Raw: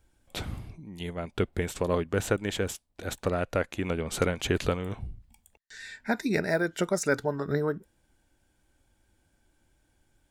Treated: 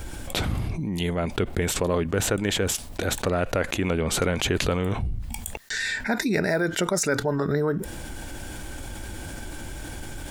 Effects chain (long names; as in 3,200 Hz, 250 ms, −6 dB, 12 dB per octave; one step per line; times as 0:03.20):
envelope flattener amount 70%